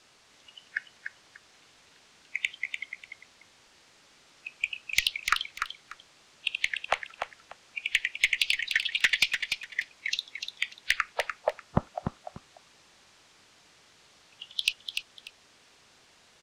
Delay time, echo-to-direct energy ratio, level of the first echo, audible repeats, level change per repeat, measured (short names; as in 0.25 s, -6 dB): 0.295 s, -6.5 dB, -6.5 dB, 2, -13.0 dB